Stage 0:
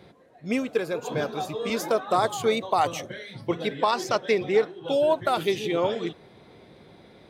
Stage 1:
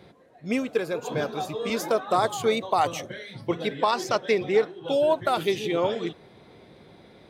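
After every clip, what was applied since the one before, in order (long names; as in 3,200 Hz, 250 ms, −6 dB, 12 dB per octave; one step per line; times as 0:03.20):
no processing that can be heard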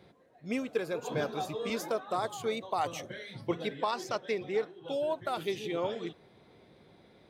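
speech leveller within 4 dB 0.5 s
level −8 dB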